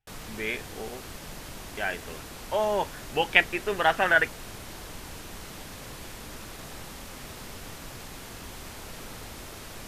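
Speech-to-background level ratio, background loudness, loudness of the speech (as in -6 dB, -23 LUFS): 15.0 dB, -41.0 LUFS, -26.0 LUFS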